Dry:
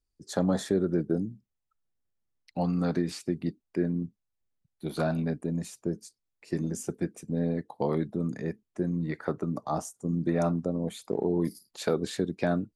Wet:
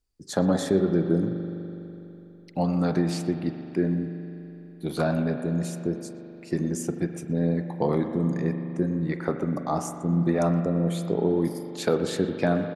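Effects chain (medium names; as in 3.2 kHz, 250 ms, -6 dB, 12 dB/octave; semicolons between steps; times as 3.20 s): speakerphone echo 120 ms, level -14 dB; spring tank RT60 3.3 s, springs 41 ms, chirp 70 ms, DRR 7 dB; trim +3.5 dB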